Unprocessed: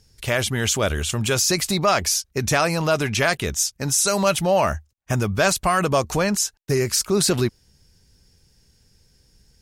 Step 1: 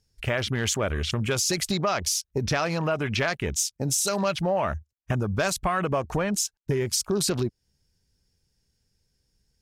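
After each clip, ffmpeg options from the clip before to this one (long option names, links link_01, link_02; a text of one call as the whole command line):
ffmpeg -i in.wav -af "afwtdn=0.0282,acompressor=threshold=-27dB:ratio=3,volume=2.5dB" out.wav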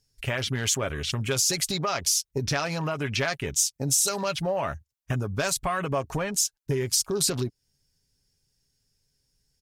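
ffmpeg -i in.wav -af "highshelf=frequency=3700:gain=7,aecho=1:1:7.3:0.39,volume=-3.5dB" out.wav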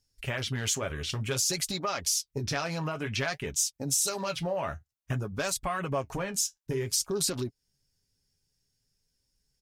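ffmpeg -i in.wav -af "flanger=delay=3.3:depth=9:regen=-54:speed=0.54:shape=sinusoidal" out.wav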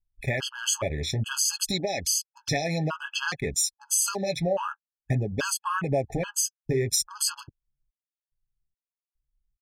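ffmpeg -i in.wav -af "anlmdn=0.1,afftfilt=real='re*gt(sin(2*PI*1.2*pts/sr)*(1-2*mod(floor(b*sr/1024/850),2)),0)':imag='im*gt(sin(2*PI*1.2*pts/sr)*(1-2*mod(floor(b*sr/1024/850),2)),0)':win_size=1024:overlap=0.75,volume=6dB" out.wav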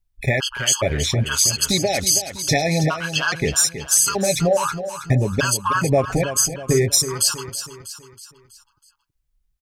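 ffmpeg -i in.wav -af "aecho=1:1:323|646|969|1292|1615:0.282|0.132|0.0623|0.0293|0.0138,volume=8dB" out.wav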